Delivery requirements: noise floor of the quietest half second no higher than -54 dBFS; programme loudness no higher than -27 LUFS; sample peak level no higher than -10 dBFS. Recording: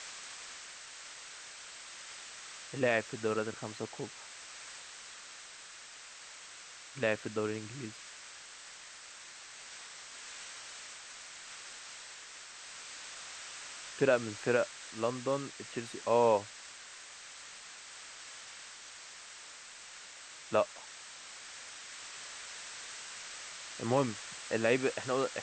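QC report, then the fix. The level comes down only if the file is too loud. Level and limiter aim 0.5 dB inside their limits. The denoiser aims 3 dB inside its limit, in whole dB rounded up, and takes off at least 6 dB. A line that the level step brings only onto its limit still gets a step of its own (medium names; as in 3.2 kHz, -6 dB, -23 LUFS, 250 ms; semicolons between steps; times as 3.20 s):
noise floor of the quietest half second -51 dBFS: fail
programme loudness -38.0 LUFS: pass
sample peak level -14.5 dBFS: pass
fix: noise reduction 6 dB, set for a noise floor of -51 dBFS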